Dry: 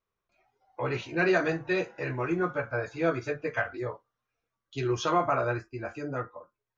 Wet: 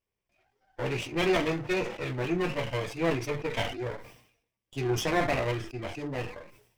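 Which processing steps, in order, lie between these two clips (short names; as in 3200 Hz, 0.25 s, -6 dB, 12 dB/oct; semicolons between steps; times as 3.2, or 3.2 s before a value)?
minimum comb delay 0.36 ms; sustainer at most 86 dB/s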